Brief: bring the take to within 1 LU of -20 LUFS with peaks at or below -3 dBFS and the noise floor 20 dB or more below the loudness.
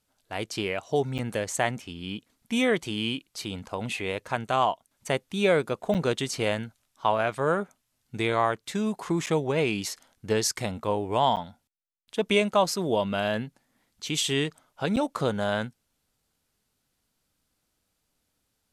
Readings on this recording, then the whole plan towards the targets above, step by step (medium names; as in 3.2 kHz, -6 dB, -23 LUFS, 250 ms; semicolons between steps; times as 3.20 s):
dropouts 5; longest dropout 8.3 ms; loudness -27.5 LUFS; peak level -8.5 dBFS; loudness target -20.0 LUFS
-> interpolate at 1.18/5.94/9.26/11.36/14.96 s, 8.3 ms; trim +7.5 dB; peak limiter -3 dBFS